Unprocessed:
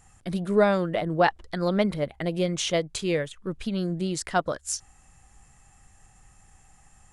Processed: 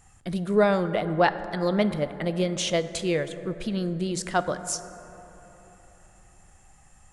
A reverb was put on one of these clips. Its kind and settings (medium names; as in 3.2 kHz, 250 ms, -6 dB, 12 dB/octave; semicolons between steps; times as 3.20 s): plate-style reverb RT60 3.9 s, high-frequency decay 0.3×, DRR 11 dB